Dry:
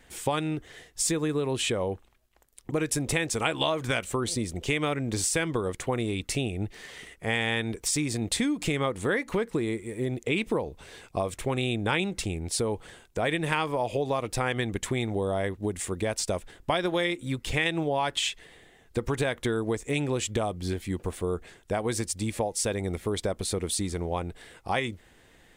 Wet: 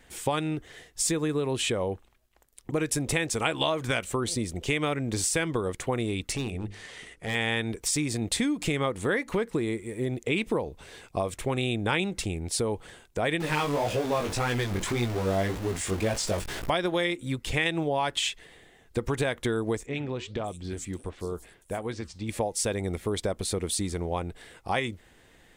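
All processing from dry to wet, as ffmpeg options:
-filter_complex "[0:a]asettb=1/sr,asplit=3[a][b][c];[a]atrim=end=6.314[d];[b]atrim=start=6.31:end=7.35,asetpts=PTS-STARTPTS,afade=t=in:d=0.004:c=qsin,afade=t=out:st=1.036:d=0.004:c=qsin,lowpass=f=11k:w=0.5412,lowpass=f=11k:w=1.3066,asoftclip=type=hard:threshold=-25dB,bandreject=f=50:t=h:w=6,bandreject=f=100:t=h:w=6,bandreject=f=150:t=h:w=6,bandreject=f=200:t=h:w=6,bandreject=f=250:t=h:w=6,bandreject=f=300:t=h:w=6,bandreject=f=350:t=h:w=6,bandreject=f=400:t=h:w=6,bandreject=f=450:t=h:w=6,bandreject=f=500:t=h:w=6[e];[c]atrim=start=7.346[f];[d][e]acrossfade=d=0.004:c1=hsin:c2=qsin[g];[g][f]acrossfade=d=0.004:c1=qsin:c2=hsin,asettb=1/sr,asplit=3[h][i][j];[h]atrim=end=13.404[k];[i]atrim=start=13.4:end=16.7,asetpts=PTS-STARTPTS,afade=t=in:d=0.004:c=qsin,afade=t=out:st=3.296:d=0.004:c=qsin,aeval=exprs='val(0)+0.5*0.0501*sgn(val(0))':c=same,flanger=delay=16.5:depth=4.6:speed=1.8,acrossover=split=9100[l][m];[m]acompressor=threshold=-47dB:ratio=4:attack=1:release=60[n];[l][n]amix=inputs=2:normalize=0[o];[j]atrim=start=16.696[p];[k][o]acrossfade=d=0.004:c1=hsin:c2=qsin[q];[q][p]acrossfade=d=0.004:c1=qsin:c2=hsin,asettb=1/sr,asplit=3[r][s][t];[r]atrim=end=19.864[u];[s]atrim=start=19.86:end=22.29,asetpts=PTS-STARTPTS,afade=t=in:d=0.004:c=qsin,afade=t=out:st=2.426:d=0.004:c=qsin,flanger=delay=0.7:depth=9:regen=-87:speed=1.5:shape=sinusoidal,acrossover=split=5400[v][w];[w]adelay=580[x];[v][x]amix=inputs=2:normalize=0,atrim=end_sample=107163[y];[t]atrim=start=22.286[z];[u][y]acrossfade=d=0.004:c1=hsin:c2=qsin[aa];[aa][z]acrossfade=d=0.004:c1=qsin:c2=hsin"

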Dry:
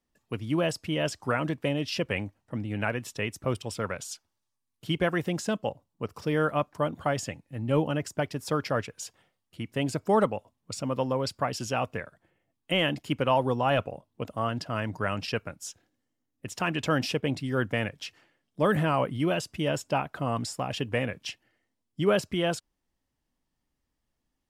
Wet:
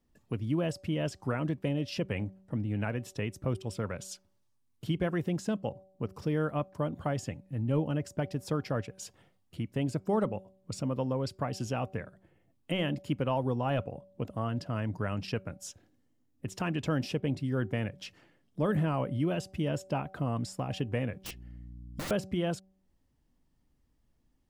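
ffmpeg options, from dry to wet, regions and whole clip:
-filter_complex "[0:a]asettb=1/sr,asplit=3[a][b][c];[a]atrim=end=21.244[d];[b]atrim=start=21.24:end=22.11,asetpts=PTS-STARTPTS,afade=t=in:d=0.004:c=qsin,afade=t=out:st=0.866:d=0.004:c=qsin,aeval=exprs='val(0)+0.00224*(sin(2*PI*60*n/s)+sin(2*PI*2*60*n/s)/2+sin(2*PI*3*60*n/s)/3+sin(2*PI*4*60*n/s)/4+sin(2*PI*5*60*n/s)/5)':c=same,aeval=exprs='(mod(28.2*val(0)+1,2)-1)/28.2':c=same[e];[c]atrim=start=22.106[f];[d][e]acrossfade=d=0.004:c1=hsin:c2=qsin[g];[g][f]acrossfade=d=0.004:c1=qsin:c2=hsin,lowshelf=f=450:g=10.5,bandreject=f=190.3:t=h:w=4,bandreject=f=380.6:t=h:w=4,bandreject=f=570.9:t=h:w=4,bandreject=f=761.2:t=h:w=4,acompressor=threshold=-45dB:ratio=1.5"

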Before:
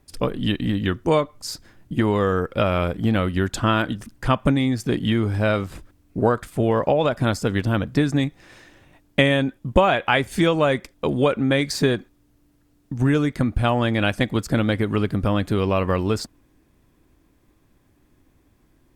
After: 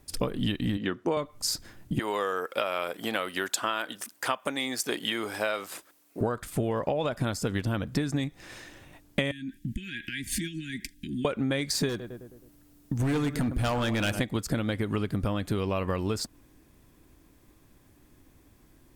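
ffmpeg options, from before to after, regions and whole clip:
-filter_complex "[0:a]asettb=1/sr,asplit=3[a][b][c];[a]atrim=end=0.774[d];[b]atrim=start=0.77:end=1.17,asetpts=PTS-STARTPTS,afade=t=in:d=0.004:c=qsin,afade=t=out:st=0.396:d=0.004:c=qsin,highpass=230,aemphasis=mode=reproduction:type=75kf[e];[c]atrim=start=1.166[f];[d][e]acrossfade=d=0.004:c1=hsin:c2=qsin[g];[g][f]acrossfade=d=0.004:c1=qsin:c2=hsin,asettb=1/sr,asplit=3[h][i][j];[h]atrim=end=1.994[k];[i]atrim=start=1.99:end=6.21,asetpts=PTS-STARTPTS,afade=t=in:d=0.004:c=qsin,afade=t=out:st=4.216:d=0.004:c=qsin,highpass=530,highshelf=f=9k:g=6[l];[j]atrim=start=6.206[m];[k][l]acrossfade=d=0.004:c1=hsin:c2=qsin[n];[n][m]acrossfade=d=0.004:c1=qsin:c2=hsin,asettb=1/sr,asplit=3[o][p][q];[o]atrim=end=9.314[r];[p]atrim=start=9.31:end=11.25,asetpts=PTS-STARTPTS,afade=t=in:d=0.004:c=qsin,afade=t=out:st=1.936:d=0.004:c=qsin,aecho=1:1:4.3:0.34,atrim=end_sample=85554,acompressor=threshold=-28dB:ratio=20:attack=3.2:release=140:knee=1:detection=peak,asuperstop=centerf=750:order=20:qfactor=0.61[s];[q]atrim=start=11.246[t];[r][s]acrossfade=d=0.004:c1=hsin:c2=qsin[u];[u][t]acrossfade=d=0.004:c1=qsin:c2=hsin,asettb=1/sr,asplit=3[v][w][x];[v]atrim=end=11.894[y];[w]atrim=start=11.89:end=14.2,asetpts=PTS-STARTPTS,afade=t=in:d=0.004:c=qsin,afade=t=out:st=2.306:d=0.004:c=qsin,highshelf=f=11k:g=6,asplit=2[z][aa];[aa]adelay=106,lowpass=f=1.4k:p=1,volume=-13.5dB,asplit=2[ab][ac];[ac]adelay=106,lowpass=f=1.4k:p=1,volume=0.54,asplit=2[ad][ae];[ae]adelay=106,lowpass=f=1.4k:p=1,volume=0.54,asplit=2[af][ag];[ag]adelay=106,lowpass=f=1.4k:p=1,volume=0.54,asplit=2[ah][ai];[ai]adelay=106,lowpass=f=1.4k:p=1,volume=0.54[aj];[z][ab][ad][af][ah][aj]amix=inputs=6:normalize=0,atrim=end_sample=101871,volume=18.5dB,asoftclip=hard,volume=-18.5dB[ak];[x]atrim=start=14.196[al];[y][ak]acrossfade=d=0.004:c1=hsin:c2=qsin[am];[am][al]acrossfade=d=0.004:c1=qsin:c2=hsin,highshelf=f=4.8k:g=6.5,acompressor=threshold=-26dB:ratio=6,volume=1dB"

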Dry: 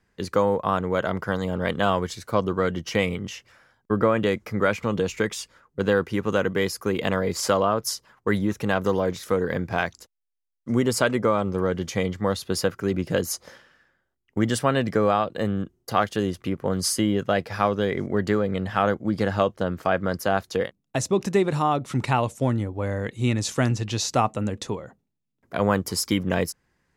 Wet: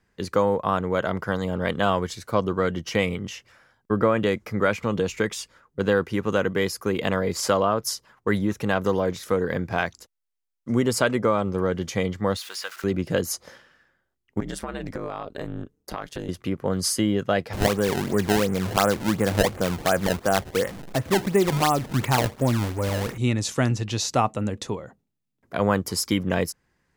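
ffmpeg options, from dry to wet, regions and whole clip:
-filter_complex "[0:a]asettb=1/sr,asplit=3[a][b][c];[a]atrim=end=12.374[d];[b]atrim=start=12.37:end=12.84,asetpts=PTS-STARTPTS,afade=t=in:d=0.004:c=qsin,afade=t=out:st=0.466:d=0.004:c=qsin,aeval=exprs='val(0)+0.5*0.0188*sgn(val(0))':c=same,highpass=1.4k,acrossover=split=4500[e][f];[f]acompressor=threshold=-36dB:ratio=4:attack=1:release=60[g];[e][g]amix=inputs=2:normalize=0[h];[c]atrim=start=12.836[i];[d][h]acrossfade=d=0.004:c1=hsin:c2=qsin[j];[j][i]acrossfade=d=0.004:c1=qsin:c2=hsin,asettb=1/sr,asplit=3[k][l][m];[k]atrim=end=14.404[n];[l]atrim=start=14.4:end=16.29,asetpts=PTS-STARTPTS,afade=t=in:d=0.004:c=qsin,afade=t=out:st=1.886:d=0.004:c=qsin,aeval=exprs='val(0)*sin(2*PI*76*n/s)':c=same,acompressor=threshold=-26dB:ratio=12:attack=3.2:release=140:knee=1:detection=peak,bandreject=f=3k:w=18[o];[m]atrim=start=16.286[p];[n][o]acrossfade=d=0.004:c1=hsin:c2=qsin[q];[q][p]acrossfade=d=0.004:c1=qsin:c2=hsin,asettb=1/sr,asplit=3[r][s][t];[r]atrim=end=17.534[u];[s]atrim=start=17.53:end=23.18,asetpts=PTS-STARTPTS,afade=t=in:d=0.004:c=qsin,afade=t=out:st=5.646:d=0.004:c=qsin,aeval=exprs='val(0)+0.5*0.0266*sgn(val(0))':c=same,lowpass=f=2.5k:w=0.5412,lowpass=f=2.5k:w=1.3066,acrusher=samples=22:mix=1:aa=0.000001:lfo=1:lforange=35.2:lforate=2.8[v];[t]atrim=start=23.176[w];[u][v]acrossfade=d=0.004:c1=hsin:c2=qsin[x];[x][w]acrossfade=d=0.004:c1=qsin:c2=hsin"

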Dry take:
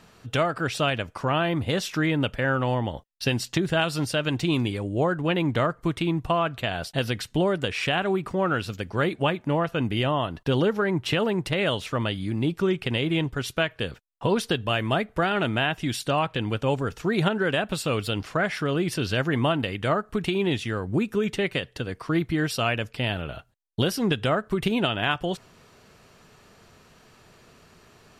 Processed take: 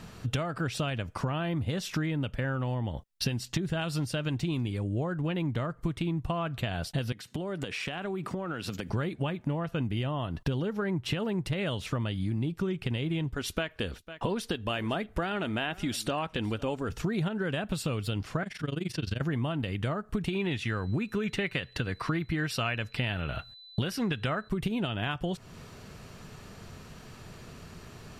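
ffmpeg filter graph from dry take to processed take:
-filter_complex "[0:a]asettb=1/sr,asplit=3[a][b][c];[a]atrim=end=7.124[d];[b]atrim=start=7.12:end=8.9,asetpts=PTS-STARTPTS,afade=t=in:d=0.004:c=qsin,afade=t=out:st=1.776:d=0.004:c=qsin,highpass=190,acompressor=threshold=-36dB:ratio=6:attack=3.2:release=140:knee=1:detection=peak[e];[c]atrim=start=8.896[f];[d][e]acrossfade=d=0.004:c1=hsin:c2=qsin[g];[g][f]acrossfade=d=0.004:c1=qsin:c2=hsin,asettb=1/sr,asplit=3[h][i][j];[h]atrim=end=13.344[k];[i]atrim=start=13.34:end=16.89,asetpts=PTS-STARTPTS,afade=t=in:d=0.004:c=qsin,afade=t=out:st=3.546:d=0.004:c=qsin,equalizer=f=130:t=o:w=0.62:g=-14,aecho=1:1:502:0.0631,atrim=end_sample=156555[l];[j]atrim=start=16.886[m];[k][l]acrossfade=d=0.004:c1=hsin:c2=qsin[n];[n][m]acrossfade=d=0.004:c1=qsin:c2=hsin,asettb=1/sr,asplit=3[o][p][q];[o]atrim=end=18.434[r];[p]atrim=start=18.43:end=19.21,asetpts=PTS-STARTPTS,afade=t=in:d=0.004:c=qsin,afade=t=out:st=0.776:d=0.004:c=qsin,acrossover=split=540|1700|5800[s][t][u][v];[s]acompressor=threshold=-30dB:ratio=3[w];[t]acompressor=threshold=-44dB:ratio=3[x];[u]acompressor=threshold=-35dB:ratio=3[y];[v]acompressor=threshold=-51dB:ratio=3[z];[w][x][y][z]amix=inputs=4:normalize=0,tremolo=f=23:d=0.919[aa];[q]atrim=start=19.206[ab];[r][aa]acrossfade=d=0.004:c1=hsin:c2=qsin[ac];[ac][ab]acrossfade=d=0.004:c1=qsin:c2=hsin,asettb=1/sr,asplit=3[ad][ae][af];[ad]atrim=end=20.334[ag];[ae]atrim=start=20.33:end=24.49,asetpts=PTS-STARTPTS,afade=t=in:d=0.004:c=qsin,afade=t=out:st=4.156:d=0.004:c=qsin,equalizer=f=1.9k:w=0.57:g=8.5,bandreject=f=3.2k:w=22,aeval=exprs='val(0)+0.00251*sin(2*PI*4000*n/s)':c=same[ah];[af]atrim=start=24.486[ai];[ag][ah]acrossfade=d=0.004:c1=hsin:c2=qsin[aj];[aj][ai]acrossfade=d=0.004:c1=qsin:c2=hsin,bass=f=250:g=8,treble=f=4k:g=1,acompressor=threshold=-32dB:ratio=6,volume=3.5dB"

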